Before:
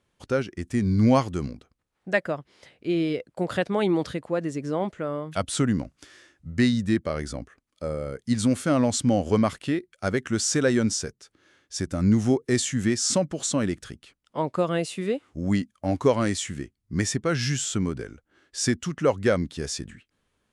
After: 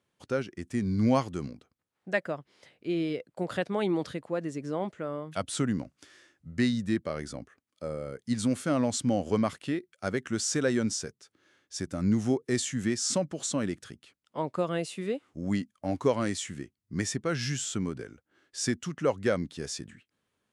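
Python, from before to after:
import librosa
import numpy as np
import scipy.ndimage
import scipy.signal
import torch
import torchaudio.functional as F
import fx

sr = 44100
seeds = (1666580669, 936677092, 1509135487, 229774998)

y = scipy.signal.sosfilt(scipy.signal.butter(2, 100.0, 'highpass', fs=sr, output='sos'), x)
y = y * 10.0 ** (-5.0 / 20.0)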